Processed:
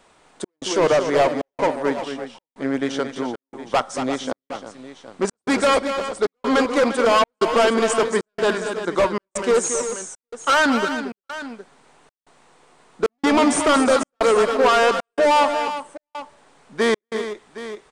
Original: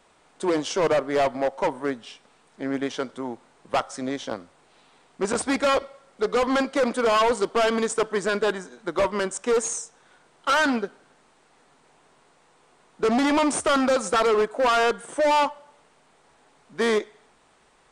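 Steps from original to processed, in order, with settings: tapped delay 0.229/0.347/0.765 s -9/-11.5/-14.5 dB; step gate "xxxxx..xxxx" 170 bpm -60 dB; gain +4 dB

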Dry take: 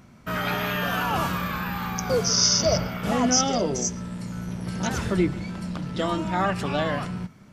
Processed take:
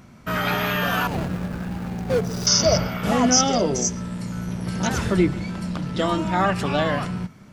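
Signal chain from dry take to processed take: 1.07–2.47 median filter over 41 samples; gain +3.5 dB

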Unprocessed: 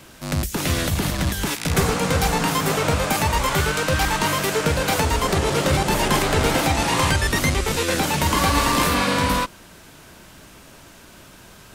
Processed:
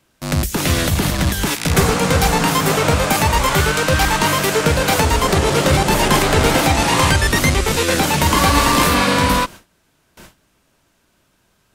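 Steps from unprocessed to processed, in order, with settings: gate with hold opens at -33 dBFS; gain +5 dB

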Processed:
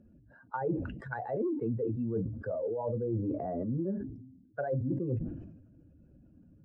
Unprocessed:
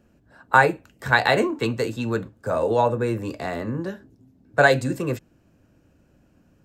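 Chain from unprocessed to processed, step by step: spectral contrast raised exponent 1.9; reverse; compressor 8:1, threshold -29 dBFS, peak gain reduction 18.5 dB; reverse; treble ducked by the level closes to 640 Hz, closed at -31 dBFS; sustainer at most 56 dB/s

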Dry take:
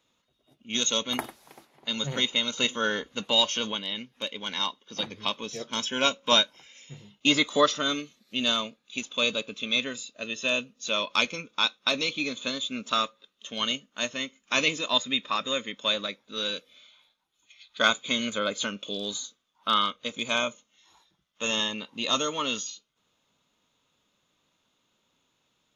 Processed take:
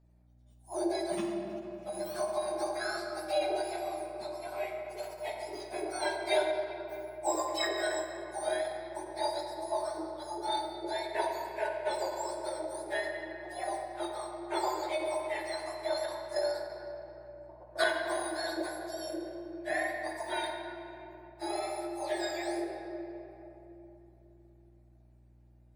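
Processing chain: spectrum mirrored in octaves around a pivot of 1500 Hz; 15.92–17.84 transient shaper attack +9 dB, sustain +5 dB; hum 60 Hz, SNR 27 dB; shoebox room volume 170 m³, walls hard, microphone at 0.41 m; ending taper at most 140 dB/s; gain -8.5 dB

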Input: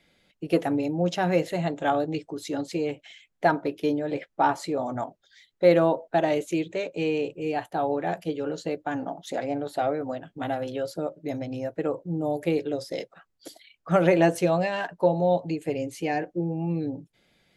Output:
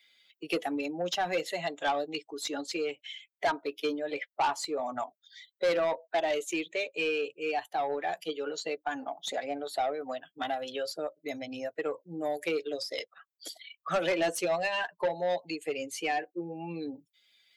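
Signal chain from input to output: per-bin expansion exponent 1.5; HPF 900 Hz 6 dB/oct; dynamic EQ 1500 Hz, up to -6 dB, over -45 dBFS, Q 0.8; overdrive pedal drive 20 dB, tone 5700 Hz, clips at -15 dBFS; three-band squash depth 40%; gain -2.5 dB

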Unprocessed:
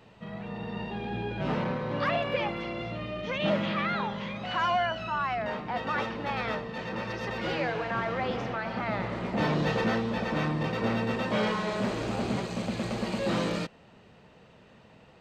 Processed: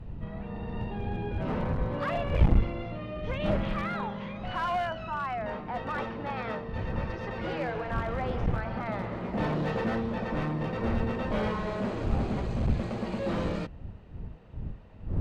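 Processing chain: wind noise 94 Hz -29 dBFS; high shelf 2700 Hz -12 dB; one-sided clip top -24.5 dBFS; gain -1 dB

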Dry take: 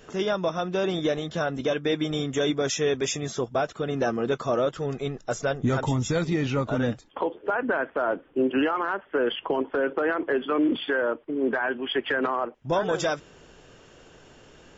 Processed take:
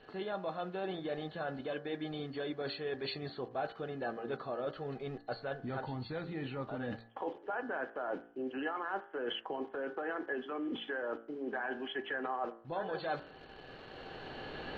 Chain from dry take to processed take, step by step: nonlinear frequency compression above 3800 Hz 4:1; recorder AGC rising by 7.3 dB/s; in parallel at -8 dB: bit-crush 7-bit; on the sum: air absorption 240 m; reverse; compressor 5:1, threshold -32 dBFS, peak gain reduction 13.5 dB; reverse; low shelf 190 Hz -6.5 dB; de-hum 57.18 Hz, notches 35; small resonant body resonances 780/1700/3000 Hz, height 12 dB, ringing for 90 ms; gain -3.5 dB

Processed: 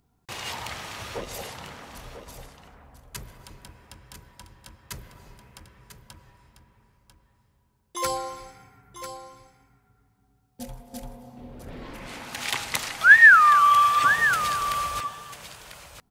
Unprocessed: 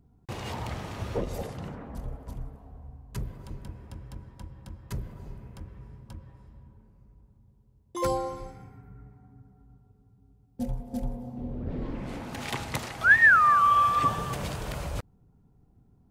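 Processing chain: tilt shelf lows -9.5 dB, about 760 Hz; echo 0.995 s -10.5 dB

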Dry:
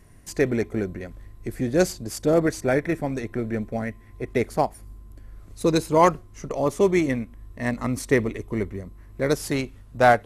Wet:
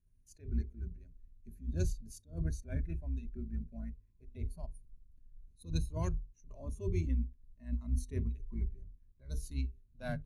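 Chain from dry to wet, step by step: octaver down 2 oct, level 0 dB; passive tone stack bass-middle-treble 10-0-1; notches 50/100/150/200/250/300/350/400/450 Hz; spectral noise reduction 13 dB; ripple EQ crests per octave 1.5, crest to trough 10 dB; attack slew limiter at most 200 dB/s; gain +1.5 dB

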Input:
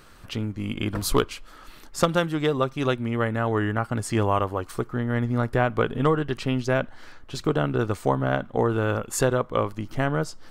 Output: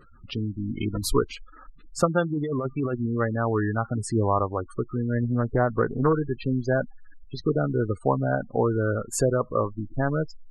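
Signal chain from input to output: spectral gate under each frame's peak -15 dB strong; 2.3–3.06 negative-ratio compressor -26 dBFS, ratio -1; 5.24–6.13 Doppler distortion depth 0.2 ms

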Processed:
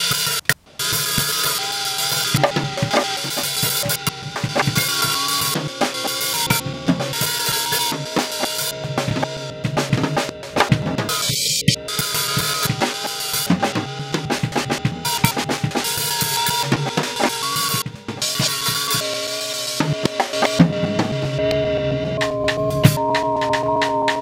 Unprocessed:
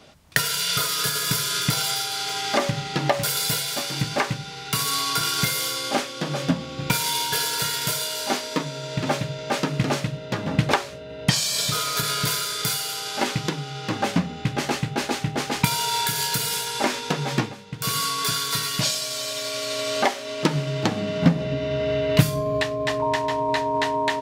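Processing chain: slices in reverse order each 0.132 s, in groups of 6; wow and flutter 28 cents; spectral delete 11.3–11.75, 600–1900 Hz; gain +4.5 dB

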